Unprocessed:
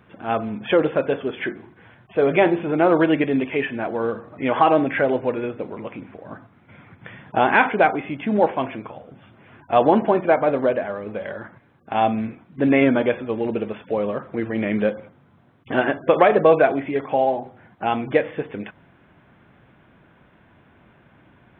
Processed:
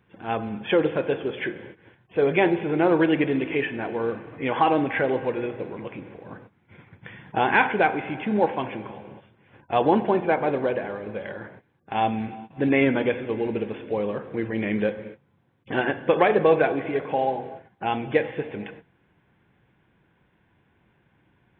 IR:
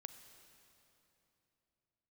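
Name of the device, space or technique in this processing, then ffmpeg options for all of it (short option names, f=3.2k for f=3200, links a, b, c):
keyed gated reverb: -filter_complex "[0:a]equalizer=f=250:t=o:w=0.33:g=-5,equalizer=f=630:t=o:w=0.33:g=-8,equalizer=f=1.25k:t=o:w=0.33:g=-7,asplit=3[a][b][c];[1:a]atrim=start_sample=2205[d];[b][d]afir=irnorm=-1:irlink=0[e];[c]apad=whole_len=952225[f];[e][f]sidechaingate=range=-32dB:threshold=-47dB:ratio=16:detection=peak,volume=9dB[g];[a][g]amix=inputs=2:normalize=0,volume=-9dB"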